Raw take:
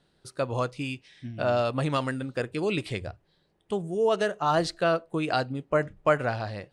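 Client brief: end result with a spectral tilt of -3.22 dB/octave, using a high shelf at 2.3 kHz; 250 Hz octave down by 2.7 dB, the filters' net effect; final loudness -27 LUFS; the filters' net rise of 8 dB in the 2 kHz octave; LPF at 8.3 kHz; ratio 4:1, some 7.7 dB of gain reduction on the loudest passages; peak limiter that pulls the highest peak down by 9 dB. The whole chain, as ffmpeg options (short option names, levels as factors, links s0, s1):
-af "lowpass=8300,equalizer=f=250:t=o:g=-4,equalizer=f=2000:t=o:g=8.5,highshelf=f=2300:g=5.5,acompressor=threshold=0.0708:ratio=4,volume=1.58,alimiter=limit=0.188:level=0:latency=1"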